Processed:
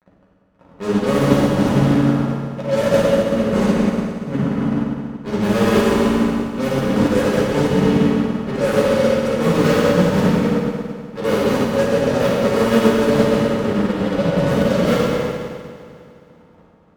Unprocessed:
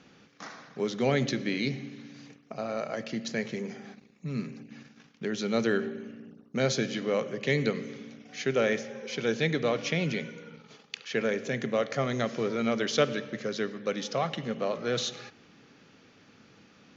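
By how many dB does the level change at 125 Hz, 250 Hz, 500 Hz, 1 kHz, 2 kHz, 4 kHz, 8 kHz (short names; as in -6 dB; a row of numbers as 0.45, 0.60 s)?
+15.5 dB, +16.5 dB, +13.5 dB, +14.0 dB, +8.0 dB, +7.0 dB, n/a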